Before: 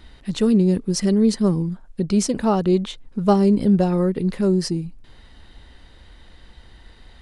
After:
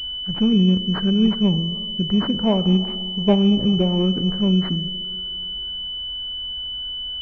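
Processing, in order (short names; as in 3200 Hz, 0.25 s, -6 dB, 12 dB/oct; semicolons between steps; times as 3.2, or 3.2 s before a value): spring tank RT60 2.3 s, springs 32/38/59 ms, chirp 70 ms, DRR 12 dB; formant shift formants -4 st; pulse-width modulation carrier 3000 Hz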